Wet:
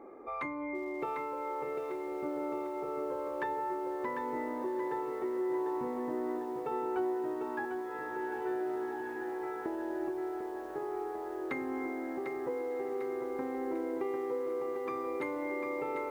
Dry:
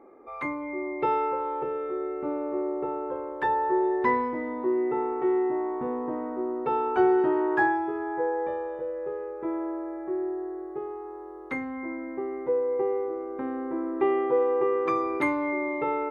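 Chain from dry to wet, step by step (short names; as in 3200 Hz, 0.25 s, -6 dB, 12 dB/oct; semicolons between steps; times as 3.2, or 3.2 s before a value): 7.65–9.66 rippled Chebyshev high-pass 1300 Hz, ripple 6 dB; diffused feedback echo 1.529 s, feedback 51%, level -15.5 dB; compressor 16:1, threshold -36 dBFS, peak gain reduction 20 dB; diffused feedback echo 1.479 s, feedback 45%, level -12.5 dB; lo-fi delay 0.748 s, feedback 55%, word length 10-bit, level -6.5 dB; gain +2 dB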